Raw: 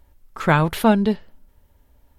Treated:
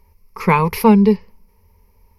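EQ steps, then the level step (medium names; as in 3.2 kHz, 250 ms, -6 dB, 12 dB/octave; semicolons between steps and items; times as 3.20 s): rippled EQ curve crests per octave 0.84, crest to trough 17 dB; 0.0 dB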